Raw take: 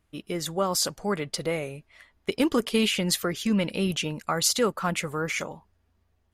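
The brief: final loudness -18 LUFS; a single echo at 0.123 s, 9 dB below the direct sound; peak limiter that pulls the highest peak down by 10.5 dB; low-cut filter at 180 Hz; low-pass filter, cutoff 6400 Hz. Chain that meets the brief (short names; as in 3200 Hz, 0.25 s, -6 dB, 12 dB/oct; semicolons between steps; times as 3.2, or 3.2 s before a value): HPF 180 Hz; LPF 6400 Hz; limiter -23 dBFS; echo 0.123 s -9 dB; gain +14.5 dB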